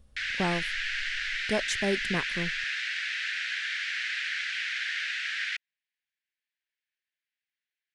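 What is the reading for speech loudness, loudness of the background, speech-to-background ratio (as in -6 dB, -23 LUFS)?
-32.5 LUFS, -30.5 LUFS, -2.0 dB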